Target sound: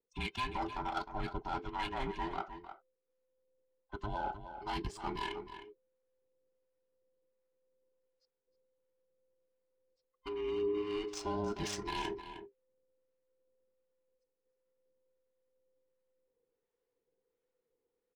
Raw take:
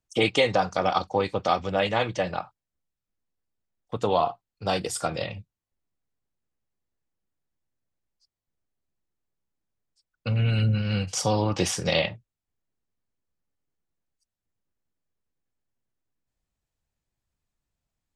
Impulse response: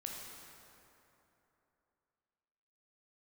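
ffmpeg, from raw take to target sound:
-filter_complex "[0:a]afftfilt=real='real(if(between(b,1,1008),(2*floor((b-1)/24)+1)*24-b,b),0)':imag='imag(if(between(b,1,1008),(2*floor((b-1)/24)+1)*24-b,b),0)*if(between(b,1,1008),-1,1)':win_size=2048:overlap=0.75,areverse,acompressor=threshold=0.0251:ratio=5,areverse,asoftclip=type=tanh:threshold=0.0794,adynamicsmooth=sensitivity=6:basefreq=3000,acrossover=split=750[s0][s1];[s0]aeval=exprs='val(0)*(1-0.5/2+0.5/2*cos(2*PI*1.4*n/s))':c=same[s2];[s1]aeval=exprs='val(0)*(1-0.5/2-0.5/2*cos(2*PI*1.4*n/s))':c=same[s3];[s2][s3]amix=inputs=2:normalize=0,asplit=2[s4][s5];[s5]adelay=309,volume=0.316,highshelf=f=4000:g=-6.95[s6];[s4][s6]amix=inputs=2:normalize=0"

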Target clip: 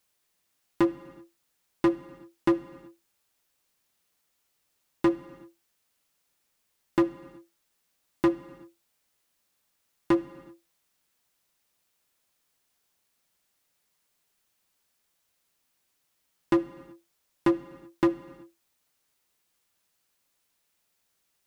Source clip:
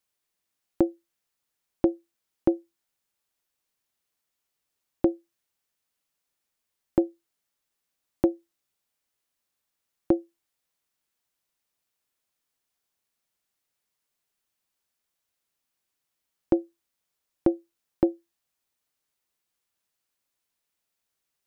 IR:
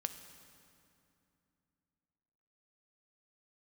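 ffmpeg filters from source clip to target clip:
-filter_complex "[0:a]asoftclip=type=hard:threshold=0.0596,asplit=2[s0][s1];[1:a]atrim=start_sample=2205,afade=t=out:st=0.44:d=0.01,atrim=end_sample=19845[s2];[s1][s2]afir=irnorm=-1:irlink=0,volume=1.41[s3];[s0][s3]amix=inputs=2:normalize=0"

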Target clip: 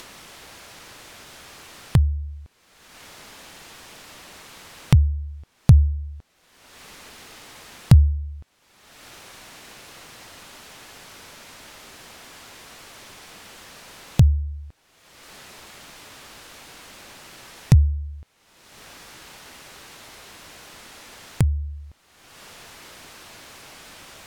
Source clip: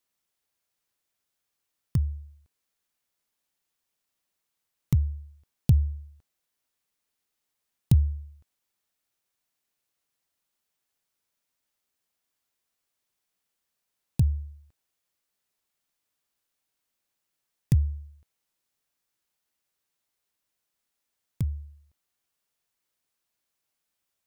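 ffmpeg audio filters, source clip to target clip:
-af "aemphasis=mode=reproduction:type=50fm,acompressor=mode=upward:threshold=0.0708:ratio=2.5,volume=2.37"

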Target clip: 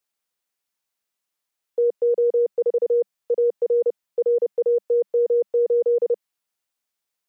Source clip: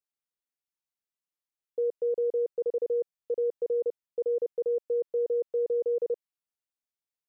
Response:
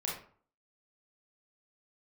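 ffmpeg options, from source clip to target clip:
-filter_complex "[0:a]equalizer=f=200:t=o:w=0.33:g=4,acrossover=split=400[s0][s1];[s0]alimiter=level_in=6.68:limit=0.0631:level=0:latency=1,volume=0.15[s2];[s1]acontrast=64[s3];[s2][s3]amix=inputs=2:normalize=0,volume=1.68"

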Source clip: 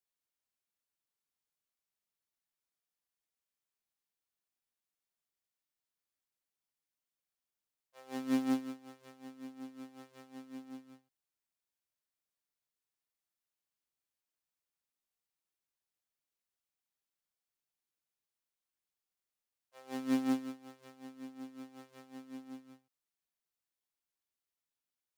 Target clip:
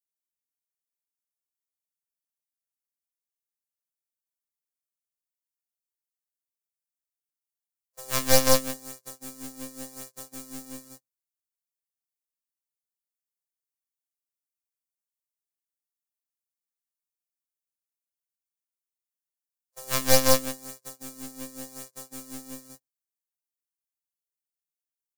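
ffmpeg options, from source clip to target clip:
-af "agate=range=0.0251:threshold=0.00158:ratio=16:detection=peak,aexciter=amount=5.2:drive=8.6:freq=4600,aeval=exprs='0.282*(cos(1*acos(clip(val(0)/0.282,-1,1)))-cos(1*PI/2))+0.0251*(cos(3*acos(clip(val(0)/0.282,-1,1)))-cos(3*PI/2))+0.0891*(cos(7*acos(clip(val(0)/0.282,-1,1)))-cos(7*PI/2))+0.0891*(cos(8*acos(clip(val(0)/0.282,-1,1)))-cos(8*PI/2))':c=same,aecho=1:1:5.9:0.44,volume=1.88"

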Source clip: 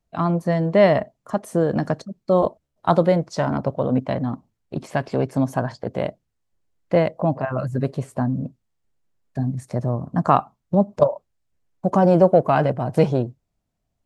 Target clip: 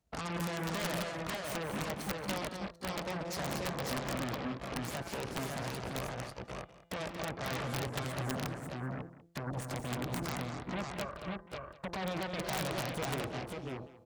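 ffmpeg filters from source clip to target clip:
-af "bandreject=f=170.1:t=h:w=4,bandreject=f=340.2:t=h:w=4,bandreject=f=510.3:t=h:w=4,bandreject=f=680.4:t=h:w=4,bandreject=f=850.5:t=h:w=4,bandreject=f=1020.6:t=h:w=4,bandreject=f=1190.7:t=h:w=4,bandreject=f=1360.8:t=h:w=4,bandreject=f=1530.9:t=h:w=4,bandreject=f=1701:t=h:w=4,bandreject=f=1871.1:t=h:w=4,bandreject=f=2041.2:t=h:w=4,bandreject=f=2211.3:t=h:w=4,bandreject=f=2381.4:t=h:w=4,bandreject=f=2551.5:t=h:w=4,bandreject=f=2721.6:t=h:w=4,bandreject=f=2891.7:t=h:w=4,bandreject=f=3061.8:t=h:w=4,bandreject=f=3231.9:t=h:w=4,bandreject=f=3402:t=h:w=4,bandreject=f=3572.1:t=h:w=4,bandreject=f=3742.2:t=h:w=4,bandreject=f=3912.3:t=h:w=4,bandreject=f=4082.4:t=h:w=4,acompressor=threshold=0.0316:ratio=16,alimiter=level_in=1.78:limit=0.0631:level=0:latency=1:release=167,volume=0.562,aeval=exprs='0.0355*(cos(1*acos(clip(val(0)/0.0355,-1,1)))-cos(1*PI/2))+0.000282*(cos(4*acos(clip(val(0)/0.0355,-1,1)))-cos(4*PI/2))+0.000891*(cos(5*acos(clip(val(0)/0.0355,-1,1)))-cos(5*PI/2))+0.0158*(cos(8*acos(clip(val(0)/0.0355,-1,1)))-cos(8*PI/2))':c=same,highpass=f=42:w=0.5412,highpass=f=42:w=1.3066,aecho=1:1:176|231|531|547|741:0.266|0.447|0.316|0.668|0.112,aeval=exprs='(mod(16.8*val(0)+1,2)-1)/16.8':c=same,volume=0.75"

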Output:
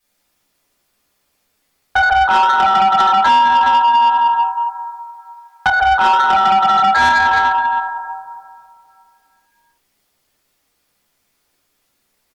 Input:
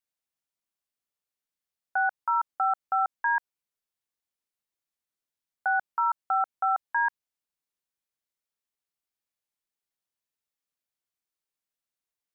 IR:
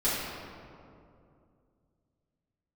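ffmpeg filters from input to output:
-filter_complex "[1:a]atrim=start_sample=2205[s0];[0:a][s0]afir=irnorm=-1:irlink=0,acontrast=81,asettb=1/sr,asplit=3[s1][s2][s3];[s1]atrim=end=3.004[s4];[s2]atrim=start=3:end=5.7,asetpts=PTS-STARTPTS,afade=t=in:d=0.004:c=qsin,afade=t=out:st=2.696:d=0.004:c=qsin,highpass=f=960:t=q:w=6.1[s5];[s3]atrim=start=5.696[s6];[s4][s5]acrossfade=d=0.004:c1=hsin:c2=qsin[s7];[s7][s6]acrossfade=d=0.004:c1=qsin:c2=hsin,acompressor=threshold=0.178:ratio=8,asplit=2[s8][s9];[s9]adelay=14,volume=0.299[s10];[s8][s10]amix=inputs=2:normalize=0,asoftclip=type=tanh:threshold=0.15,volume=2.82" -ar 48000 -c:a libmp3lame -b:a 96k

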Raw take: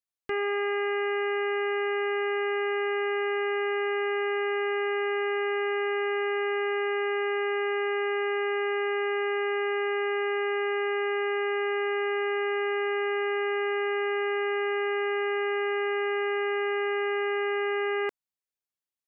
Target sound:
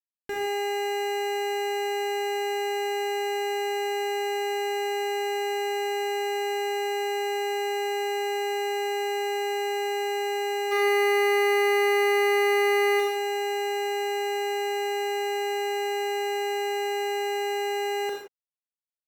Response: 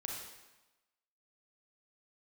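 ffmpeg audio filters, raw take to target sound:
-filter_complex "[0:a]bandreject=f=60:t=h:w=6,bandreject=f=120:t=h:w=6,alimiter=level_in=1.26:limit=0.0631:level=0:latency=1,volume=0.794,asplit=3[s0][s1][s2];[s0]afade=t=out:st=10.71:d=0.02[s3];[s1]acontrast=83,afade=t=in:st=10.71:d=0.02,afade=t=out:st=12.99:d=0.02[s4];[s2]afade=t=in:st=12.99:d=0.02[s5];[s3][s4][s5]amix=inputs=3:normalize=0,acrusher=bits=5:mix=0:aa=0.5[s6];[1:a]atrim=start_sample=2205,afade=t=out:st=0.23:d=0.01,atrim=end_sample=10584[s7];[s6][s7]afir=irnorm=-1:irlink=0,volume=1.88"

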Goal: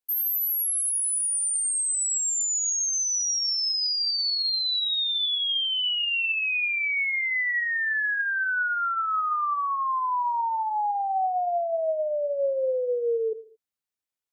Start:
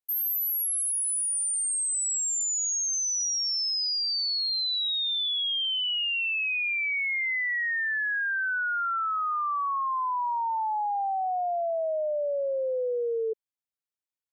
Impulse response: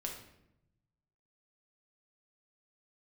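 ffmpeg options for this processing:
-filter_complex "[0:a]asplit=2[s0][s1];[1:a]atrim=start_sample=2205,afade=t=out:st=0.35:d=0.01,atrim=end_sample=15876,asetrate=57330,aresample=44100[s2];[s1][s2]afir=irnorm=-1:irlink=0,volume=0.501[s3];[s0][s3]amix=inputs=2:normalize=0"

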